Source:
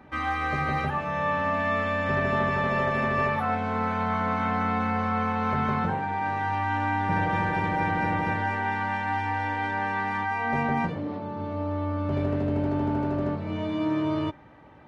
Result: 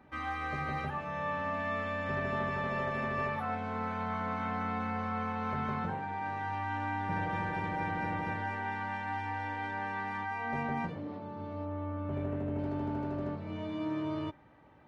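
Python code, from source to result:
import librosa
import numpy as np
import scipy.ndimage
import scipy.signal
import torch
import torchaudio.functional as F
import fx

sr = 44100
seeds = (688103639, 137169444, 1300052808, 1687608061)

y = fx.peak_eq(x, sr, hz=4800.0, db=-12.0, octaves=0.85, at=(11.65, 12.59))
y = F.gain(torch.from_numpy(y), -8.5).numpy()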